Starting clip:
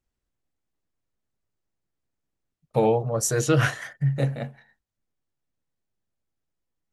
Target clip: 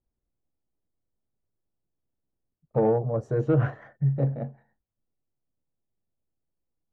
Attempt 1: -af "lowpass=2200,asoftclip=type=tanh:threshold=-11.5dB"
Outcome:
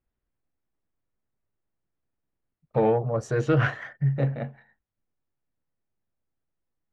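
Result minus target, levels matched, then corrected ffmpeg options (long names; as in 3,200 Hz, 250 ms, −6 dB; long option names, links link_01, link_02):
2,000 Hz band +10.5 dB
-af "lowpass=780,asoftclip=type=tanh:threshold=-11.5dB"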